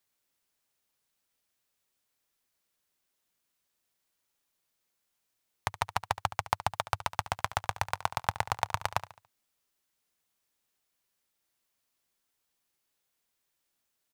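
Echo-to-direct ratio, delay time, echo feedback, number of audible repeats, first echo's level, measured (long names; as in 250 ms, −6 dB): −14.0 dB, 71 ms, 40%, 3, −15.0 dB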